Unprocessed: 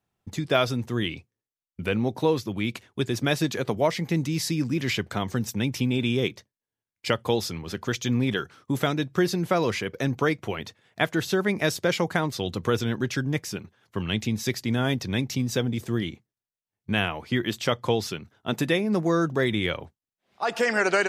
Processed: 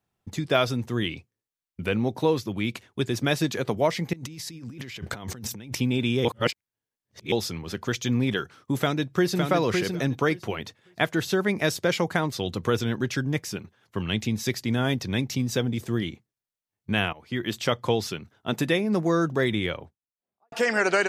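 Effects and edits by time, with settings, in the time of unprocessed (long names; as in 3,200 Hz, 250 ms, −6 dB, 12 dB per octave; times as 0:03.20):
0:04.13–0:05.75: compressor whose output falls as the input rises −38 dBFS
0:06.25–0:07.32: reverse
0:08.79–0:09.43: delay throw 560 ms, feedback 15%, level −4.5 dB
0:17.13–0:17.55: fade in, from −17 dB
0:19.45–0:20.52: fade out and dull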